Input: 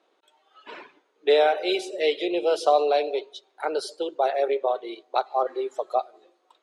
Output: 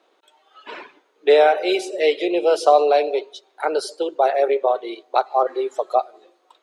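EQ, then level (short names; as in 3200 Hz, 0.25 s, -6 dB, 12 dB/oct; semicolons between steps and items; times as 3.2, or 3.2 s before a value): HPF 180 Hz 6 dB/oct; dynamic EQ 3500 Hz, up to -6 dB, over -47 dBFS, Q 2.4; +6.0 dB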